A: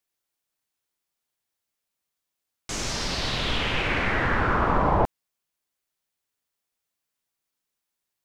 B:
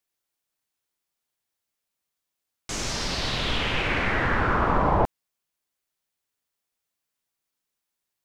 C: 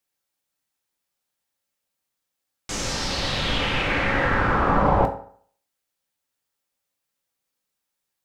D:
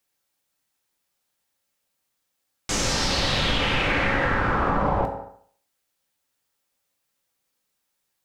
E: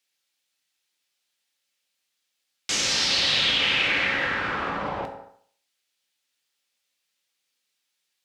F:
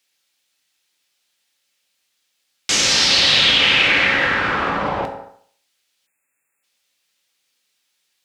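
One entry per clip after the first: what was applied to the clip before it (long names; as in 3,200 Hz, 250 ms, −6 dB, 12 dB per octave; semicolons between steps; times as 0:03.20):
no processing that can be heard
convolution reverb RT60 0.55 s, pre-delay 3 ms, DRR 4 dB; level +1 dB
downward compressor 10 to 1, threshold −23 dBFS, peak gain reduction 10 dB; level +4.5 dB
meter weighting curve D; level −6.5 dB
time-frequency box erased 0:06.07–0:06.64, 2,700–6,800 Hz; level +8 dB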